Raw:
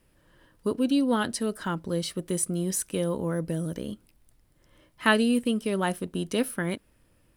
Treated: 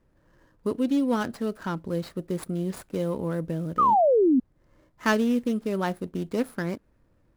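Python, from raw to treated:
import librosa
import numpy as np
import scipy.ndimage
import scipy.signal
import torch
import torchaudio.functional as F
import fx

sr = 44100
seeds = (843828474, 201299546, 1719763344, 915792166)

y = scipy.ndimage.median_filter(x, 15, mode='constant')
y = fx.spec_paint(y, sr, seeds[0], shape='fall', start_s=3.78, length_s=0.62, low_hz=240.0, high_hz=1300.0, level_db=-19.0)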